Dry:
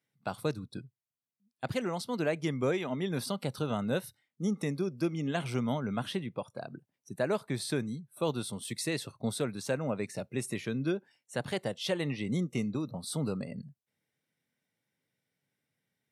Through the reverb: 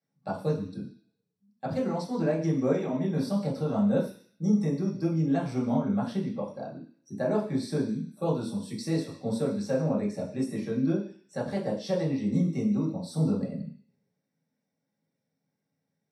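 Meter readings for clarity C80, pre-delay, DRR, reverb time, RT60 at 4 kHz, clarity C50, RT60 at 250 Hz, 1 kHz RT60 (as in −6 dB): 11.5 dB, 3 ms, −7.0 dB, 0.40 s, 0.70 s, 8.0 dB, 0.45 s, 0.45 s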